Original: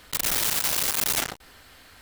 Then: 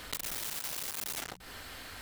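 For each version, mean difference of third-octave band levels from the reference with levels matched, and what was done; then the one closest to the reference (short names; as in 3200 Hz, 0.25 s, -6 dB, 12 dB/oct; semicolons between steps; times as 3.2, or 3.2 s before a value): 7.0 dB: notches 60/120/180 Hz; soft clip -20.5 dBFS, distortion -18 dB; compressor 16:1, threshold -40 dBFS, peak gain reduction 16 dB; gain +5 dB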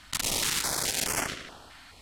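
4.5 dB: LPF 9500 Hz 12 dB/oct; tape echo 74 ms, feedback 75%, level -7.5 dB, low-pass 5300 Hz; stepped notch 4.7 Hz 470–3800 Hz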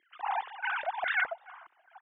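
21.5 dB: sine-wave speech; feedback echo 0.301 s, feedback 25%, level -20 dB; stepped band-pass 4.8 Hz 340–1700 Hz; gain +1.5 dB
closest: second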